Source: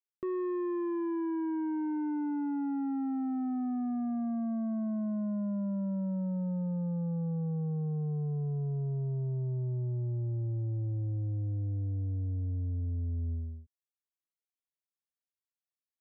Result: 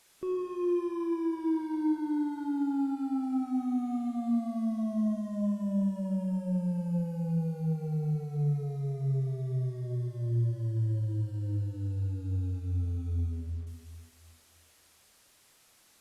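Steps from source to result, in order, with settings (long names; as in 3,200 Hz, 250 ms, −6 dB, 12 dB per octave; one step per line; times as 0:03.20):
linear delta modulator 64 kbit/s, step −56.5 dBFS
on a send at −2.5 dB: convolution reverb RT60 1.9 s, pre-delay 4 ms
on the sum: Opus 64 kbit/s 48,000 Hz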